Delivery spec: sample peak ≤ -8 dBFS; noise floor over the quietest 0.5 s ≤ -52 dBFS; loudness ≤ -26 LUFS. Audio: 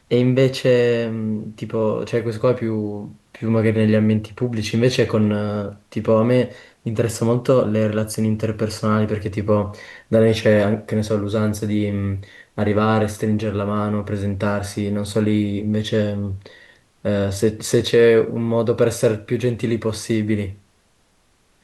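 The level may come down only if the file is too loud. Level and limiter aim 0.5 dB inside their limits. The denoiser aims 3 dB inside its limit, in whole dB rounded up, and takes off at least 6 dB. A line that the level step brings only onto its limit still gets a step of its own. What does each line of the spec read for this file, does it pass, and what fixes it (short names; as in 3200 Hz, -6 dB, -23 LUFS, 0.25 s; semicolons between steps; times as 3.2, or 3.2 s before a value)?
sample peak -5.5 dBFS: fail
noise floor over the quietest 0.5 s -60 dBFS: OK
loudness -20.0 LUFS: fail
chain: gain -6.5 dB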